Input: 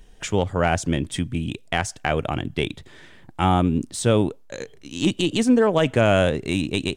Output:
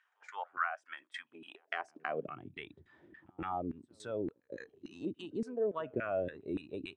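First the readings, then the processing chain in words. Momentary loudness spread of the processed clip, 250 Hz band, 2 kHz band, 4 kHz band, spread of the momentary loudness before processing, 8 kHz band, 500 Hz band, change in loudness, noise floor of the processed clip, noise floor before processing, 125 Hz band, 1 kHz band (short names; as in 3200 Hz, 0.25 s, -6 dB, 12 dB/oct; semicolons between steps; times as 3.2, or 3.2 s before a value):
15 LU, -20.5 dB, -14.5 dB, -24.0 dB, 11 LU, -32.0 dB, -16.0 dB, -17.5 dB, -78 dBFS, -48 dBFS, -27.0 dB, -14.5 dB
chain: high-pass sweep 1300 Hz -> 79 Hz, 1.19–2.6; compressor 2:1, threshold -37 dBFS, peak gain reduction 14 dB; LFO band-pass saw down 3.5 Hz 290–1800 Hz; reverse echo 0.165 s -23.5 dB; spectral noise reduction 11 dB; gain +2 dB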